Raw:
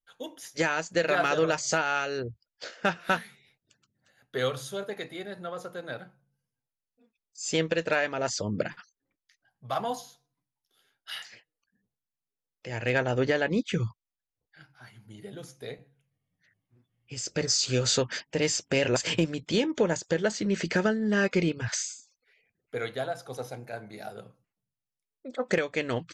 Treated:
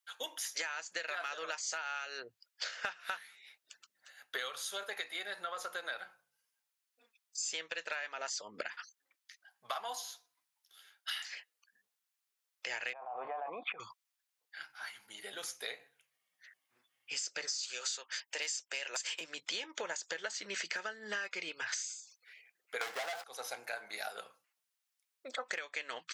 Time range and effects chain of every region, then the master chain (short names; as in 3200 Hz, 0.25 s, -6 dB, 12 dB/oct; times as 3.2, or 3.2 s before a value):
12.93–13.8 vocal tract filter a + fast leveller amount 100%
17.63–19.21 Bessel high-pass 380 Hz, order 4 + high shelf 7600 Hz +11.5 dB
22.81–23.24 median filter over 15 samples + bell 780 Hz +12 dB 0.32 oct + sample leveller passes 5
whole clip: HPF 1100 Hz 12 dB/oct; compressor 12:1, threshold -45 dBFS; gain +9 dB